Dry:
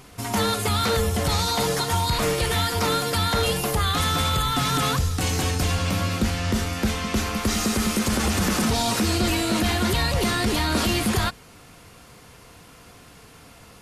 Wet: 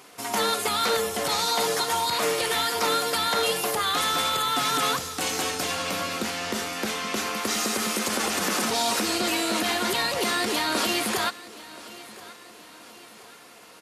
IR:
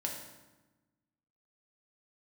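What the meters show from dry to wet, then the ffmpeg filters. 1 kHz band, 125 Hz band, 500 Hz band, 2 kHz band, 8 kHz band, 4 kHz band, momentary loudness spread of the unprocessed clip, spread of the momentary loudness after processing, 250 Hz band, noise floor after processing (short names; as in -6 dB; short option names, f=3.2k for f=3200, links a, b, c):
0.0 dB, -18.5 dB, -1.0 dB, 0.0 dB, 0.0 dB, 0.0 dB, 3 LU, 6 LU, -7.0 dB, -48 dBFS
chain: -filter_complex "[0:a]highpass=350,asplit=2[a][b];[b]aecho=0:1:1027|2054|3081|4108:0.112|0.0527|0.0248|0.0116[c];[a][c]amix=inputs=2:normalize=0"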